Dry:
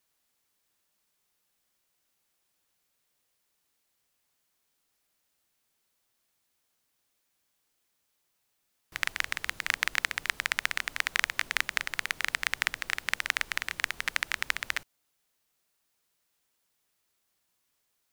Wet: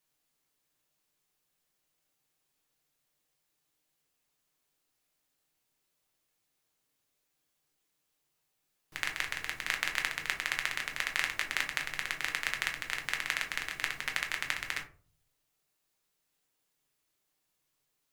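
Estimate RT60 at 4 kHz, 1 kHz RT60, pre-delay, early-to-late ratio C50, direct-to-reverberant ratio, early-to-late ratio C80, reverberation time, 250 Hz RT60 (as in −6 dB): 0.20 s, 0.35 s, 6 ms, 10.5 dB, 1.5 dB, 16.0 dB, 0.40 s, 0.60 s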